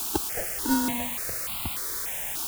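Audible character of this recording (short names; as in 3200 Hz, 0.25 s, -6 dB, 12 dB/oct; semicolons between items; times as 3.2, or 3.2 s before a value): aliases and images of a low sample rate 1200 Hz, jitter 0%; random-step tremolo; a quantiser's noise floor 6-bit, dither triangular; notches that jump at a steady rate 3.4 Hz 530–1700 Hz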